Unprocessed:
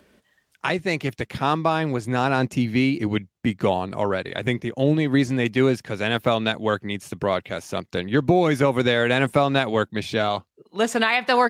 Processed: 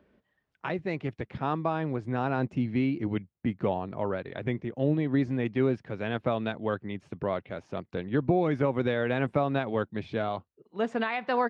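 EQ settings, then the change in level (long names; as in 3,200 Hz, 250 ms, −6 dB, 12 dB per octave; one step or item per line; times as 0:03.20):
head-to-tape spacing loss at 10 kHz 32 dB
−5.5 dB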